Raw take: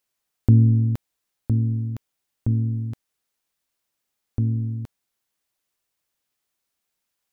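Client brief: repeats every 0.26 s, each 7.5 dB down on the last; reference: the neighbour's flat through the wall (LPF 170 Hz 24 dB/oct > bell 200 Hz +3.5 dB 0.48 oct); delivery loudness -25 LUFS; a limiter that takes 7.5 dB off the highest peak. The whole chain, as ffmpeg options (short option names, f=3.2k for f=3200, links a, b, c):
-af "alimiter=limit=-13.5dB:level=0:latency=1,lowpass=f=170:w=0.5412,lowpass=f=170:w=1.3066,equalizer=f=200:t=o:w=0.48:g=3.5,aecho=1:1:260|520|780|1040|1300:0.422|0.177|0.0744|0.0312|0.0131,volume=1.5dB"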